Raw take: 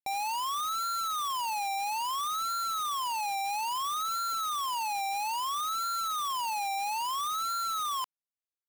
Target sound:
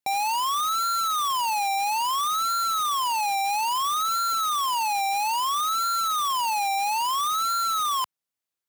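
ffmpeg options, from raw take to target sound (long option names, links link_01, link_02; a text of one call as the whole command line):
ffmpeg -i in.wav -af "highpass=72,volume=7dB" out.wav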